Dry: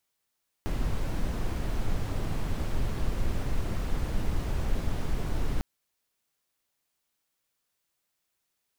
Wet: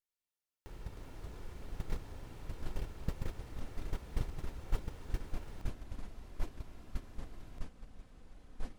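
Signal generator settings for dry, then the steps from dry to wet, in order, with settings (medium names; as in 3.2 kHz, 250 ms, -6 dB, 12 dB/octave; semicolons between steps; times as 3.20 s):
noise brown, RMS -27 dBFS 4.95 s
comb filter that takes the minimum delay 2.2 ms; gate -24 dBFS, range -17 dB; ever faster or slower copies 92 ms, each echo -5 st, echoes 2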